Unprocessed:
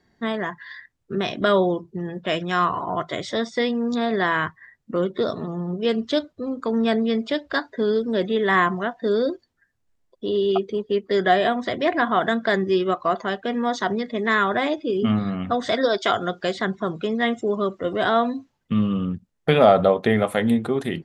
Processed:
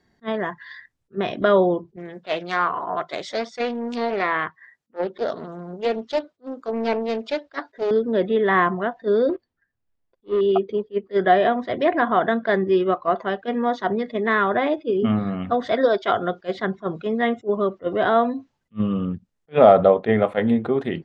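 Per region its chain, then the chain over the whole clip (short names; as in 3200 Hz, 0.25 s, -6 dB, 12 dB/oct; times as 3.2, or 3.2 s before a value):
1.96–7.91 HPF 400 Hz 6 dB/oct + Doppler distortion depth 0.41 ms
9.29–10.41 sample leveller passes 2 + compressor 1.5:1, threshold -25 dBFS + air absorption 150 m
whole clip: treble ducked by the level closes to 2900 Hz, closed at -20 dBFS; dynamic EQ 530 Hz, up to +4 dB, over -32 dBFS, Q 0.85; attack slew limiter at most 460 dB/s; gain -1 dB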